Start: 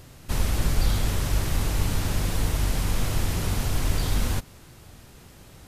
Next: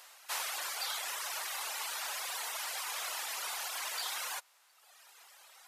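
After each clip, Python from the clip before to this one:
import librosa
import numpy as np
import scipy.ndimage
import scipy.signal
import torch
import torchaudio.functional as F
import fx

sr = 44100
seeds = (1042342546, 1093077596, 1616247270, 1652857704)

y = fx.dereverb_blind(x, sr, rt60_s=1.4)
y = scipy.signal.sosfilt(scipy.signal.butter(4, 770.0, 'highpass', fs=sr, output='sos'), y)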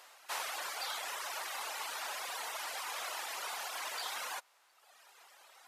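y = fx.tilt_eq(x, sr, slope=-2.0)
y = y * 10.0 ** (1.0 / 20.0)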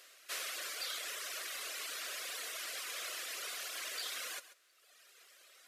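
y = fx.fixed_phaser(x, sr, hz=360.0, stages=4)
y = y + 10.0 ** (-15.0 / 20.0) * np.pad(y, (int(137 * sr / 1000.0), 0))[:len(y)]
y = y * 10.0 ** (1.0 / 20.0)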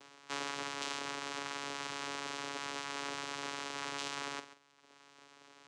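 y = fx.doubler(x, sr, ms=44.0, db=-11.0)
y = fx.vocoder(y, sr, bands=4, carrier='saw', carrier_hz=141.0)
y = y * 10.0 ** (2.5 / 20.0)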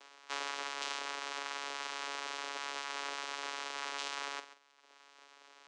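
y = fx.bandpass_edges(x, sr, low_hz=490.0, high_hz=7700.0)
y = y * 10.0 ** (1.0 / 20.0)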